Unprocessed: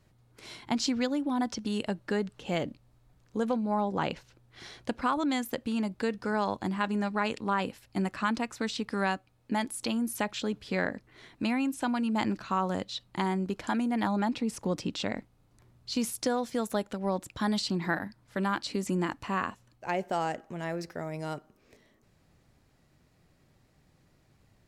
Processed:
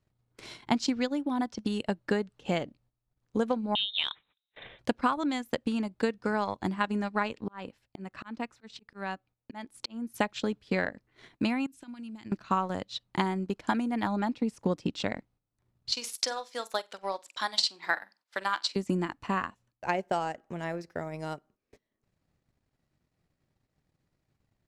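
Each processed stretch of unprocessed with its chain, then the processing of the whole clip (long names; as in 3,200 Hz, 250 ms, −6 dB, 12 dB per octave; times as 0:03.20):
0:03.75–0:04.79: high-pass filter 150 Hz 24 dB per octave + voice inversion scrambler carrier 3,900 Hz
0:07.25–0:10.14: high-shelf EQ 7,000 Hz −9.5 dB + volume swells 340 ms
0:11.66–0:12.32: downward compressor 12 to 1, threshold −34 dBFS + parametric band 700 Hz −11.5 dB 2.1 octaves
0:15.92–0:18.76: high-pass filter 670 Hz + parametric band 4,500 Hz +6 dB 1.4 octaves + flutter between parallel walls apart 7.9 metres, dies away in 0.25 s
whole clip: noise gate −57 dBFS, range −11 dB; high-shelf EQ 12,000 Hz −8 dB; transient designer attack +6 dB, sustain −10 dB; level −1.5 dB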